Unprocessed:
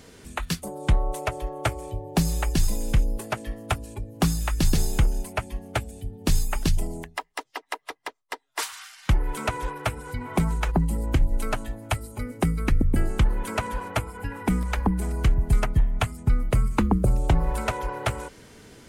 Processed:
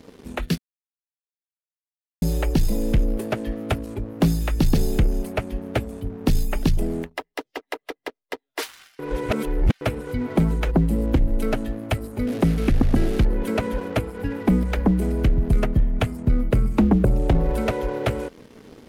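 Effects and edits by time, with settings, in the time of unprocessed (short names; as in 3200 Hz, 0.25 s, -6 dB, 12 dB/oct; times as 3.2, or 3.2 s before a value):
0.58–2.22 mute
8.99–9.81 reverse
12.27–13.25 delta modulation 64 kbps, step -30 dBFS
whole clip: graphic EQ 250/500/1000/8000 Hz +8/+7/-8/-9 dB; sample leveller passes 2; gain -5 dB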